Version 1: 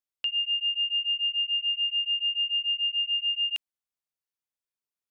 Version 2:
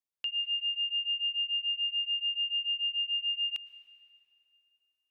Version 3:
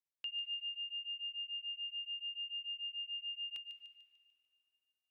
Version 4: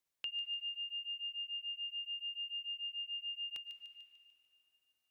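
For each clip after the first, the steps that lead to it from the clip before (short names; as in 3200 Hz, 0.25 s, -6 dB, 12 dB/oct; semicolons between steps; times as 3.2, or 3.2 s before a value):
plate-style reverb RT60 3.1 s, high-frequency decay 0.75×, pre-delay 95 ms, DRR 14 dB; gain -5 dB
thin delay 0.148 s, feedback 51%, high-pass 2500 Hz, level -8.5 dB; gain -8 dB
dynamic EQ 2800 Hz, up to -6 dB, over -55 dBFS, Q 1.7; gain +6.5 dB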